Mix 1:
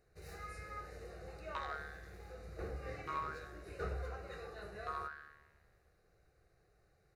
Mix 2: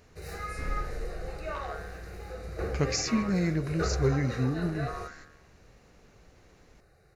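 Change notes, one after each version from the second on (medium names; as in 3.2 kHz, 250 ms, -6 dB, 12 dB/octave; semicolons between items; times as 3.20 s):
speech: unmuted; first sound +10.5 dB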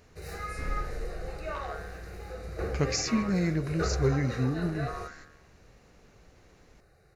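no change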